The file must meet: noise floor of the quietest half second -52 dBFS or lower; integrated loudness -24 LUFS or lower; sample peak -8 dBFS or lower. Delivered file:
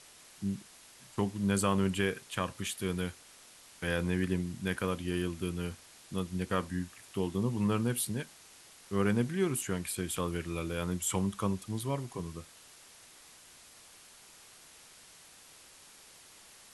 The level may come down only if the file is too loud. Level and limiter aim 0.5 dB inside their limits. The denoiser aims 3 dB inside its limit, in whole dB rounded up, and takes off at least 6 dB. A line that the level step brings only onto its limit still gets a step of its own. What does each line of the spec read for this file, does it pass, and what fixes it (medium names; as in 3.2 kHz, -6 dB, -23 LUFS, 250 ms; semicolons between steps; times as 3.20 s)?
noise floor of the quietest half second -56 dBFS: pass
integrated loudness -33.5 LUFS: pass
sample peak -14.0 dBFS: pass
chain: none needed